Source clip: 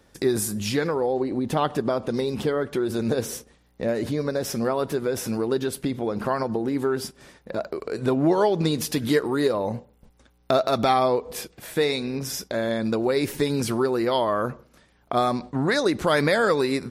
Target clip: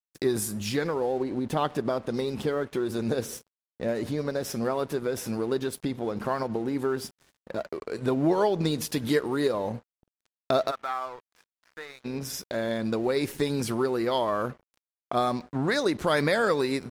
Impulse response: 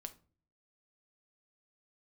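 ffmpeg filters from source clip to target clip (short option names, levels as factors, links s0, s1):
-filter_complex "[0:a]asplit=3[s0][s1][s2];[s0]afade=t=out:st=10.7:d=0.02[s3];[s1]bandpass=f=1400:t=q:w=2.6:csg=0,afade=t=in:st=10.7:d=0.02,afade=t=out:st=12.04:d=0.02[s4];[s2]afade=t=in:st=12.04:d=0.02[s5];[s3][s4][s5]amix=inputs=3:normalize=0,aeval=exprs='sgn(val(0))*max(abs(val(0))-0.00562,0)':c=same,volume=0.708"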